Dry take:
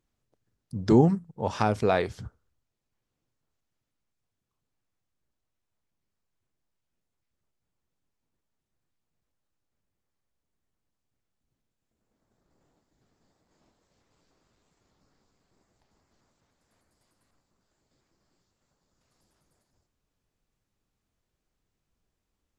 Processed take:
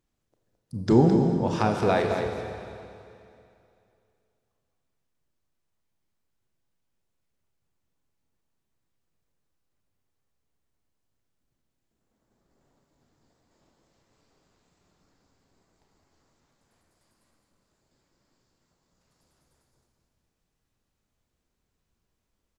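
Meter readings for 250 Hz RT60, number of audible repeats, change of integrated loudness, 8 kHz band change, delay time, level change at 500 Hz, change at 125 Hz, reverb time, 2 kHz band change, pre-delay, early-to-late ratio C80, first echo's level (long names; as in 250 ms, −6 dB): 2.6 s, 1, +1.5 dB, +2.0 dB, 214 ms, +2.5 dB, +2.0 dB, 2.6 s, +2.0 dB, 30 ms, 3.0 dB, −7.5 dB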